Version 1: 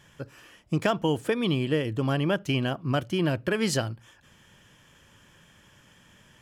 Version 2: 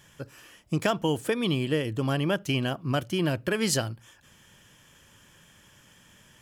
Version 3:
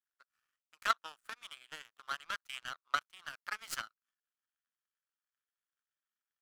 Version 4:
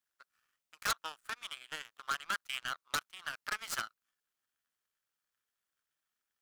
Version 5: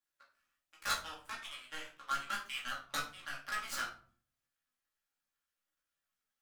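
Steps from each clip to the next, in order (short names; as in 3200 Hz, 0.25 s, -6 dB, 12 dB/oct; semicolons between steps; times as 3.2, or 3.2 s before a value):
high shelf 5700 Hz +8.5 dB; gain -1 dB
half-wave gain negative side -12 dB; ladder high-pass 1200 Hz, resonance 70%; power-law curve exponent 2; gain +10.5 dB
wavefolder -29 dBFS; gain +5.5 dB
chorus voices 4, 0.33 Hz, delay 15 ms, depth 2.5 ms; shoebox room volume 380 m³, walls furnished, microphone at 2.3 m; gain -2 dB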